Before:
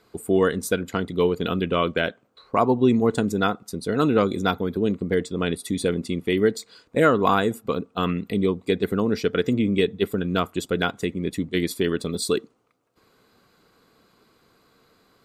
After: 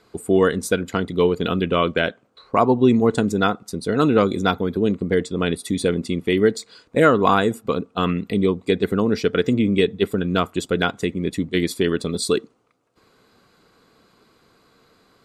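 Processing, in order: LPF 11000 Hz 12 dB/oct; gain +3 dB

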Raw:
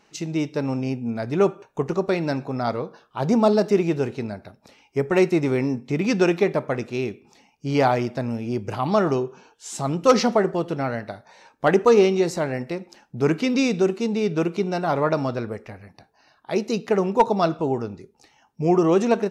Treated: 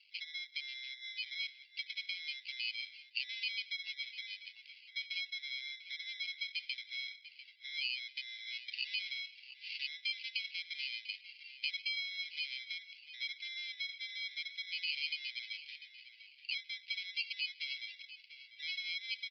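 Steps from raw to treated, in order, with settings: spectral contrast raised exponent 1.7; compressor 5:1, threshold -32 dBFS, peak gain reduction 19 dB; sample-and-hold 24×; steep high-pass 2100 Hz 72 dB/oct; on a send: tape echo 0.697 s, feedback 39%, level -11.5 dB, low-pass 3300 Hz; on the sum: downsampling 11025 Hz; gain +5.5 dB

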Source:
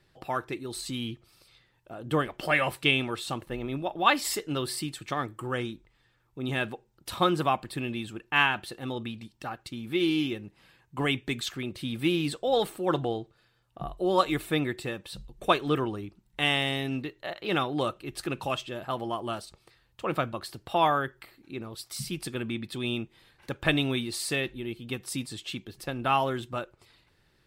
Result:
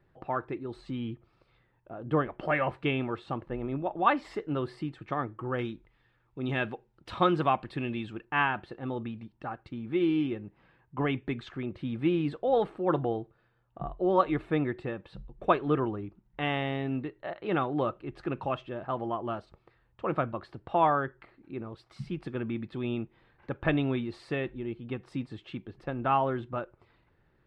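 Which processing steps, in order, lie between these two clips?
LPF 1500 Hz 12 dB/oct, from 5.59 s 2700 Hz, from 8.25 s 1600 Hz

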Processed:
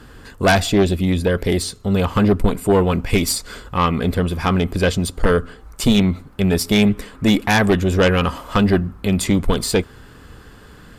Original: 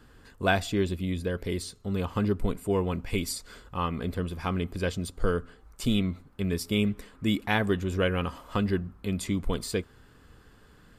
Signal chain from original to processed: added harmonics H 5 -7 dB, 6 -13 dB, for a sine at -9.5 dBFS; gain +3 dB

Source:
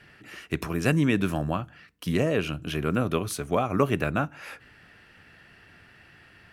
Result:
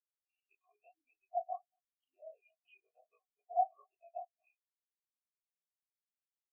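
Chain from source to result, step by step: short-time reversal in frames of 62 ms; HPF 330 Hz 12 dB/oct; notch 1300 Hz, Q 7.3; compressor 16:1, threshold -38 dBFS, peak gain reduction 17 dB; vowel filter a; resonant high shelf 4700 Hz -13.5 dB, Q 3; outdoor echo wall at 40 m, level -12 dB; spectral expander 4:1; gain +14 dB

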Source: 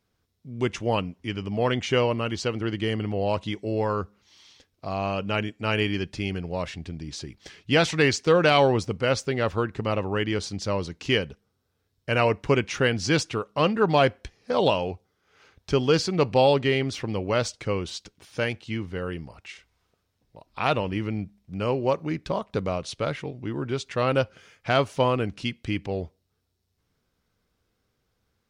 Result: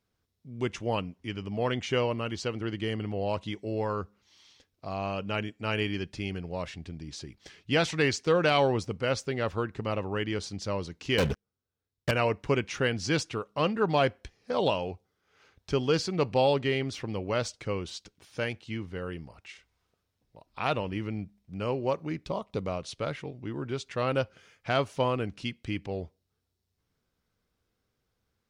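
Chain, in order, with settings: 11.18–12.11 sample leveller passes 5; 22.24–22.66 bell 1600 Hz -11.5 dB 0.31 oct; gain -5 dB

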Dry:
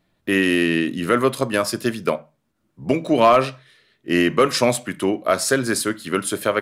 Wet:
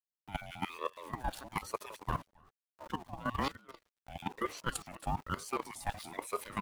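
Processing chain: random spectral dropouts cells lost 25%; reverse; compressor 12:1, threshold -29 dBFS, peak gain reduction 19.5 dB; reverse; small resonant body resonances 410/720 Hz, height 8 dB, ringing for 0.1 s; sample gate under -44 dBFS; on a send: echo 0.279 s -16.5 dB; on the sum: level quantiser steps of 15 dB; ring modulator with a swept carrier 610 Hz, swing 35%, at 1.1 Hz; gain +1 dB

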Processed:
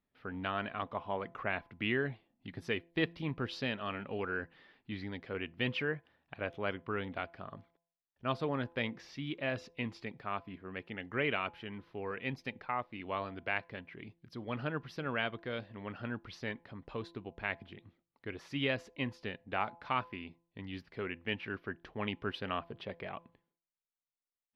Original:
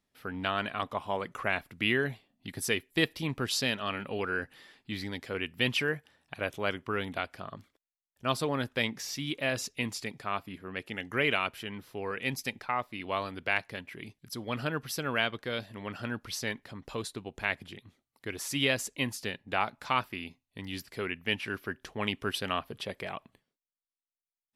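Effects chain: air absorption 300 m; de-hum 169.2 Hz, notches 6; gain -3 dB

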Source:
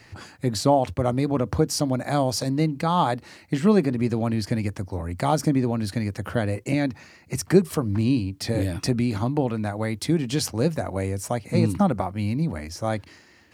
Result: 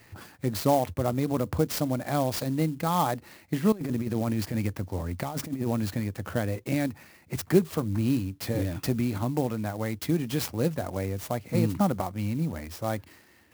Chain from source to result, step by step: 3.72–6 negative-ratio compressor -24 dBFS, ratio -0.5; clock jitter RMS 0.036 ms; gain -4 dB

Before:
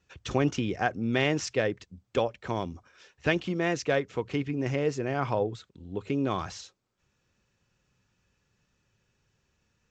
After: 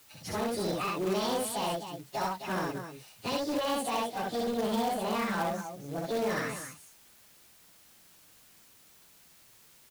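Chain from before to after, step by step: pitch shift by moving bins +8.5 st; limiter -25 dBFS, peak gain reduction 9.5 dB; on a send: loudspeakers at several distances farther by 22 m -1 dB, 89 m -10 dB; on the sum: short-mantissa float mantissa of 2-bit; in parallel at -11.5 dB: wrapped overs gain 27.5 dB; on the sum: added noise white -59 dBFS

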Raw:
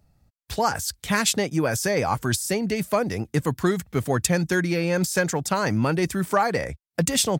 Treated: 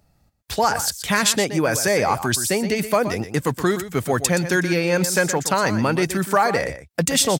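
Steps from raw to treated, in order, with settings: in parallel at -1 dB: limiter -15 dBFS, peak gain reduction 9 dB; on the sum: low shelf 230 Hz -7 dB; echo 0.122 s -11.5 dB

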